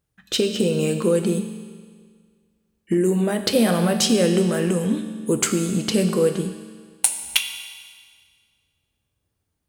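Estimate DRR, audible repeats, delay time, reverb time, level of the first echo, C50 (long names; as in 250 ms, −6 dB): 6.0 dB, no echo audible, no echo audible, 1.8 s, no echo audible, 8.0 dB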